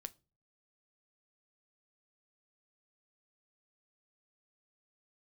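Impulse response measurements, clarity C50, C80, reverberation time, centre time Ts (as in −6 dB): 24.0 dB, 31.0 dB, 0.35 s, 2 ms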